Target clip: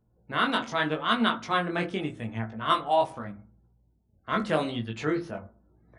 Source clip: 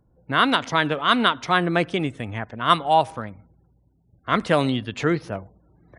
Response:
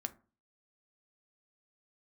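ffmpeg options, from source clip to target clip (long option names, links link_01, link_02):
-filter_complex "[0:a]flanger=delay=17.5:depth=4.5:speed=0.83[link_01];[1:a]atrim=start_sample=2205,afade=type=out:start_time=0.34:duration=0.01,atrim=end_sample=15435,asetrate=41895,aresample=44100[link_02];[link_01][link_02]afir=irnorm=-1:irlink=0,volume=-2.5dB"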